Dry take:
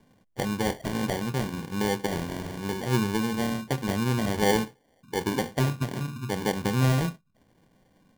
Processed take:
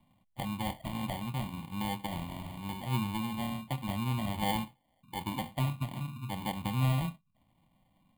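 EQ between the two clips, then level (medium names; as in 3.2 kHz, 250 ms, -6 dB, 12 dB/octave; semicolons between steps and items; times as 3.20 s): static phaser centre 1.6 kHz, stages 6; -4.0 dB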